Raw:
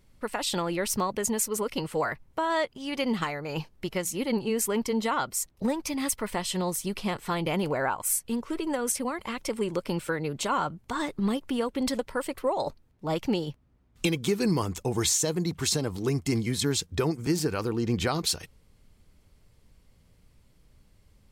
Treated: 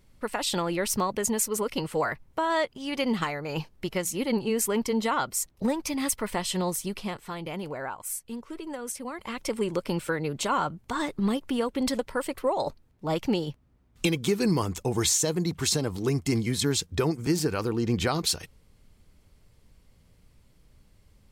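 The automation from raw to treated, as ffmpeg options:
-af "volume=9dB,afade=t=out:st=6.67:d=0.63:silence=0.398107,afade=t=in:st=9.01:d=0.48:silence=0.398107"

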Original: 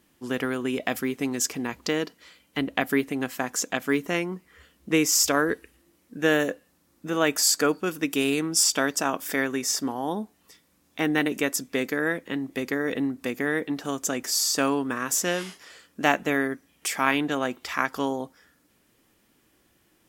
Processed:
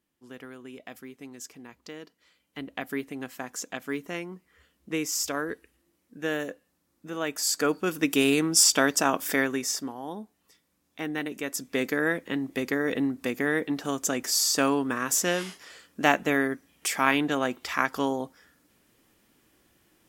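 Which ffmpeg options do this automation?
-af "volume=10dB,afade=t=in:st=2.01:d=1.04:silence=0.398107,afade=t=in:st=7.37:d=0.71:silence=0.316228,afade=t=out:st=9.27:d=0.66:silence=0.316228,afade=t=in:st=11.43:d=0.42:silence=0.398107"

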